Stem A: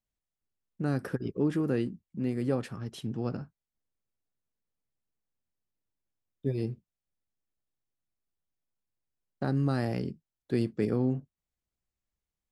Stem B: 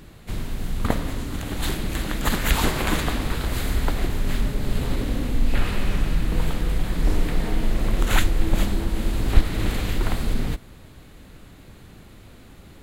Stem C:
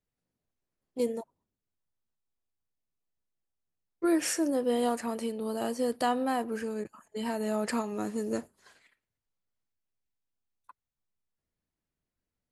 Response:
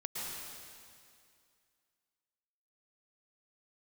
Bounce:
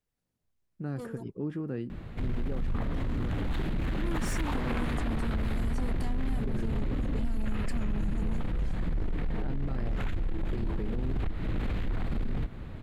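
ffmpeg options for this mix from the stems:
-filter_complex "[0:a]volume=-7.5dB[link_01];[1:a]highshelf=frequency=5200:gain=-10,acompressor=threshold=-25dB:ratio=6,asoftclip=type=tanh:threshold=-24.5dB,adelay=1900,volume=1.5dB[link_02];[2:a]asubboost=boost=7.5:cutoff=200,acompressor=threshold=-41dB:ratio=2,asoftclip=type=tanh:threshold=-36.5dB,volume=1dB[link_03];[link_01][link_02]amix=inputs=2:normalize=0,bass=frequency=250:gain=4,treble=frequency=4000:gain=-11,alimiter=level_in=0.5dB:limit=-24dB:level=0:latency=1:release=11,volume=-0.5dB,volume=0dB[link_04];[link_03][link_04]amix=inputs=2:normalize=0"

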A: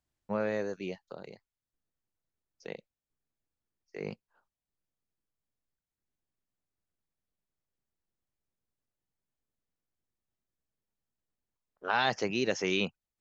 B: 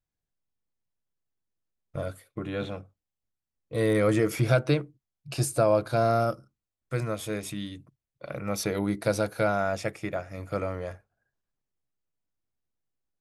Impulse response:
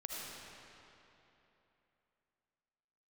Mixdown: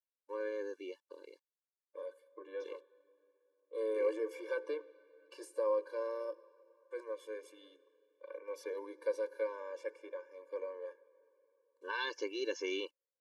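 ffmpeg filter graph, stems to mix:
-filter_complex "[0:a]acrusher=bits=10:mix=0:aa=0.000001,volume=-5.5dB[link_01];[1:a]highpass=frequency=530:width=0.5412,highpass=frequency=530:width=1.3066,tiltshelf=frequency=1400:gain=9.5,volume=-10.5dB,asplit=2[link_02][link_03];[link_03]volume=-18dB[link_04];[2:a]atrim=start_sample=2205[link_05];[link_04][link_05]afir=irnorm=-1:irlink=0[link_06];[link_01][link_02][link_06]amix=inputs=3:normalize=0,lowpass=10000,afftfilt=real='re*eq(mod(floor(b*sr/1024/300),2),1)':imag='im*eq(mod(floor(b*sr/1024/300),2),1)':win_size=1024:overlap=0.75"

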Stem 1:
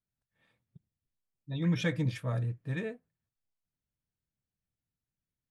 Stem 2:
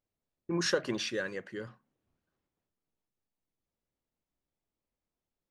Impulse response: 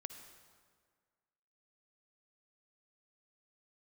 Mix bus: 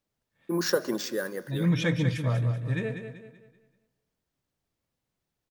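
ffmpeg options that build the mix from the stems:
-filter_complex "[0:a]volume=1.5dB,asplit=3[link_01][link_02][link_03];[link_02]volume=-4dB[link_04];[link_03]volume=-5.5dB[link_05];[1:a]highpass=frequency=170:width=0.5412,highpass=frequency=170:width=1.3066,equalizer=frequency=2600:width_type=o:width=0.8:gain=-13.5,acrusher=samples=4:mix=1:aa=0.000001,volume=2.5dB,asplit=3[link_06][link_07][link_08];[link_07]volume=-6.5dB[link_09];[link_08]volume=-21dB[link_10];[2:a]atrim=start_sample=2205[link_11];[link_04][link_09]amix=inputs=2:normalize=0[link_12];[link_12][link_11]afir=irnorm=-1:irlink=0[link_13];[link_05][link_10]amix=inputs=2:normalize=0,aecho=0:1:192|384|576|768|960:1|0.37|0.137|0.0507|0.0187[link_14];[link_01][link_06][link_13][link_14]amix=inputs=4:normalize=0"

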